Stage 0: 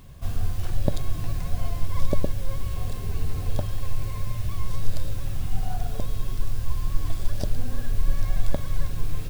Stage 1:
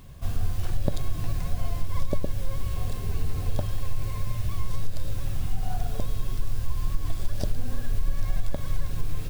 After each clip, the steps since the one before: compression, threshold -16 dBFS, peak gain reduction 7 dB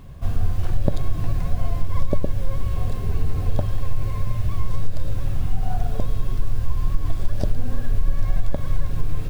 treble shelf 2.7 kHz -10 dB; trim +5.5 dB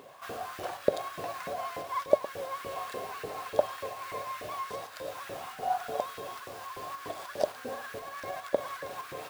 LFO high-pass saw up 3.4 Hz 420–1600 Hz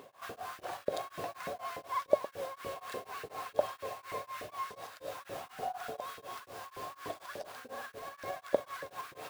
tremolo of two beating tones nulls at 4.1 Hz; trim -1 dB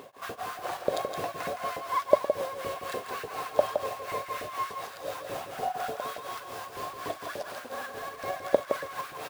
delay 166 ms -6.5 dB; trim +6 dB

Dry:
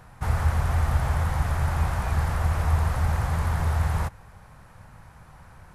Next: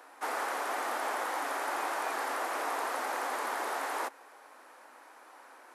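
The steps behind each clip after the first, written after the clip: steep high-pass 270 Hz 72 dB/octave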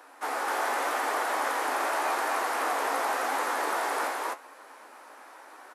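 loudspeakers at several distances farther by 25 m -9 dB, 87 m 0 dB; flange 0.87 Hz, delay 9.1 ms, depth 9.9 ms, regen +53%; trim +6 dB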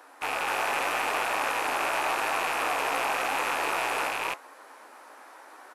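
rattle on loud lows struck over -59 dBFS, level -20 dBFS

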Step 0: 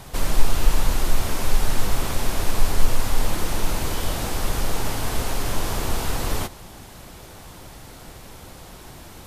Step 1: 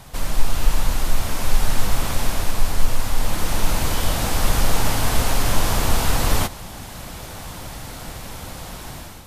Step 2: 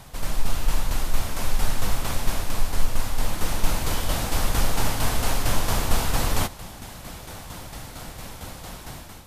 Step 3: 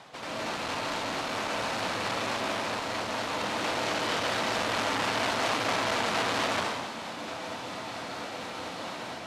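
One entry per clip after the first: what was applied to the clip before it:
peaking EQ 380 Hz -5.5 dB 0.58 oct; level rider gain up to 9.5 dB; trim -1.5 dB
tremolo saw down 4.4 Hz, depth 50%; trim -1.5 dB
band-pass 310–4200 Hz; plate-style reverb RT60 1.1 s, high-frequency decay 1×, pre-delay 115 ms, DRR -5 dB; transformer saturation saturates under 2.7 kHz

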